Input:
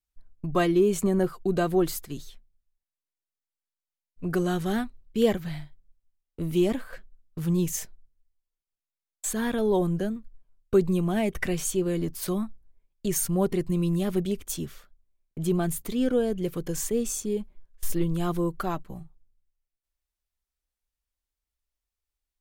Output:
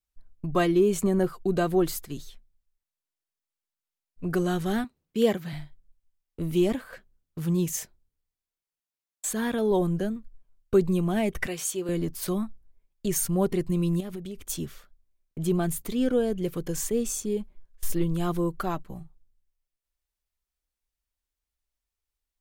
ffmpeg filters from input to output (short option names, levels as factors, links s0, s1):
-filter_complex "[0:a]asettb=1/sr,asplit=3[s0][s1][s2];[s0]atrim=end=4.844[s3];[s1]atrim=start=4.84:end=5.53,asetpts=PTS-STARTPTS,afade=t=in:d=0.004:c=qsin,afade=t=out:st=0.686:d=0.004:c=qsin,highpass=150[s4];[s2]atrim=start=5.526[s5];[s3][s4]acrossfade=d=0.004:c1=hsin:c2=qsin[s6];[s6][s5]acrossfade=d=0.004:c1=qsin:c2=hsin,asettb=1/sr,asplit=3[s7][s8][s9];[s7]atrim=end=6.744[s10];[s8]atrim=start=6.74:end=9.71,asetpts=PTS-STARTPTS,afade=t=in:d=0.004:c=qsin,afade=t=out:st=2.966:d=0.004:c=qsin,highpass=f=70:p=1[s11];[s9]atrim=start=9.706[s12];[s10][s11]acrossfade=d=0.004:c1=hsin:c2=qsin[s13];[s13][s12]acrossfade=d=0.004:c1=qsin:c2=hsin,asettb=1/sr,asplit=3[s14][s15][s16];[s14]atrim=end=11.474[s17];[s15]atrim=start=11.47:end=11.89,asetpts=PTS-STARTPTS,afade=t=in:d=0.004:c=qsin,afade=t=out:st=0.416:d=0.004:c=qsin,highpass=f=540:p=1[s18];[s16]atrim=start=11.886[s19];[s17][s18]acrossfade=d=0.004:c1=hsin:c2=qsin[s20];[s20][s19]acrossfade=d=0.004:c1=qsin:c2=hsin,asettb=1/sr,asplit=3[s21][s22][s23];[s21]atrim=end=14.004[s24];[s22]atrim=start=14:end=14.44,asetpts=PTS-STARTPTS,afade=t=in:d=0.004:c=qsin,afade=t=out:st=0.436:d=0.004:c=qsin,acompressor=threshold=0.0224:ratio=6:attack=3.2:release=140:knee=1:detection=peak[s25];[s23]atrim=start=14.436[s26];[s24][s25]acrossfade=d=0.004:c1=hsin:c2=qsin[s27];[s27][s26]acrossfade=d=0.004:c1=qsin:c2=hsin"